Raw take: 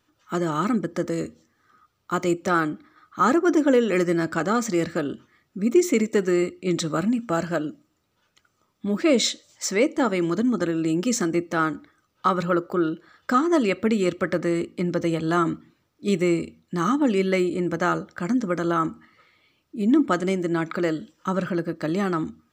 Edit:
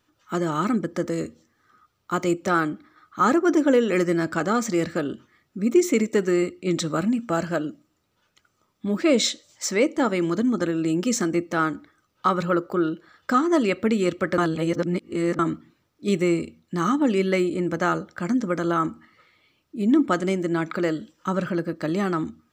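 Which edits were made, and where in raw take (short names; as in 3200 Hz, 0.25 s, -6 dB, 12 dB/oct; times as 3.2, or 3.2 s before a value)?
14.38–15.39 reverse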